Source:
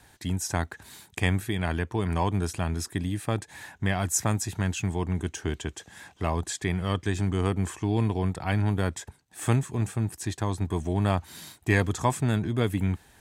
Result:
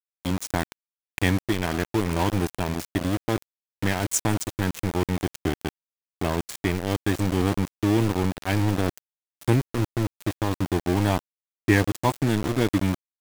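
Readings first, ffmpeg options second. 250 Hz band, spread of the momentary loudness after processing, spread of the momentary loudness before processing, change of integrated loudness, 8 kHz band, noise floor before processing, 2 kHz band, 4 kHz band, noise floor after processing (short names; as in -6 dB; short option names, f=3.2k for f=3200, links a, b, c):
+4.5 dB, 7 LU, 8 LU, +2.5 dB, 0.0 dB, -59 dBFS, +2.5 dB, +3.5 dB, under -85 dBFS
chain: -af "superequalizer=6b=2.24:10b=0.501,aeval=exprs='val(0)*gte(abs(val(0)),0.0501)':c=same,volume=2dB"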